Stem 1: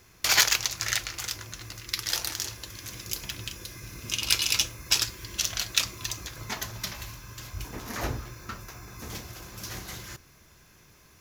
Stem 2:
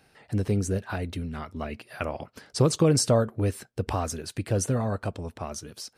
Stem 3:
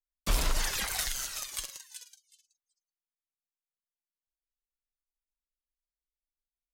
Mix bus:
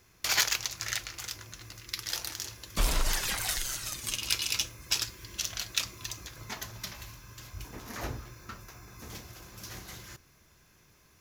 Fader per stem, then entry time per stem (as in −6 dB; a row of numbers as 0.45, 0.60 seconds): −5.5 dB, muted, +0.5 dB; 0.00 s, muted, 2.50 s